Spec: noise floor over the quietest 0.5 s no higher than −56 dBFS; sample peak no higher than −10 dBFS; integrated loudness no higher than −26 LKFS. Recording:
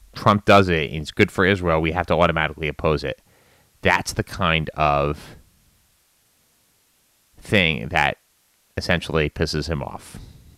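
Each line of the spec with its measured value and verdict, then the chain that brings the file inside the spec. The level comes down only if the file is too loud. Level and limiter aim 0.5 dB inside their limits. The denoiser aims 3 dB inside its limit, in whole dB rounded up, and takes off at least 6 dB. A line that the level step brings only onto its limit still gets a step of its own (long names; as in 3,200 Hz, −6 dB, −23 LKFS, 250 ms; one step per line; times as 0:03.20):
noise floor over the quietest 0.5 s −63 dBFS: in spec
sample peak −3.5 dBFS: out of spec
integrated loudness −20.5 LKFS: out of spec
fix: level −6 dB
brickwall limiter −10.5 dBFS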